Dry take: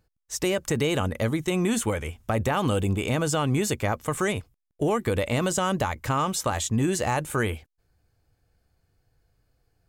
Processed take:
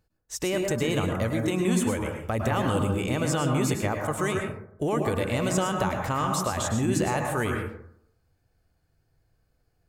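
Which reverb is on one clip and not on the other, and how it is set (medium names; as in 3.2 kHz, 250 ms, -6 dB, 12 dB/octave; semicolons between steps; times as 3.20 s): plate-style reverb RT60 0.69 s, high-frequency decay 0.3×, pre-delay 95 ms, DRR 2 dB; trim -3 dB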